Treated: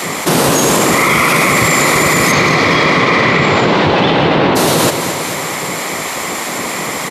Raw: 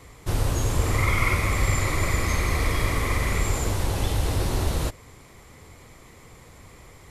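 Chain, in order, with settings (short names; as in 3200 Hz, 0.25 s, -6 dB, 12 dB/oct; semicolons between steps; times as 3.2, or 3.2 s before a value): 2.31–4.55 LPF 6000 Hz -> 3100 Hz 24 dB/oct; spectral gate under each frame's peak -10 dB weak; HPF 85 Hz; bell 160 Hz +2.5 dB 0.31 oct; feedback echo 0.223 s, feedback 54%, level -17 dB; maximiser +24.5 dB; fast leveller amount 50%; gain -2 dB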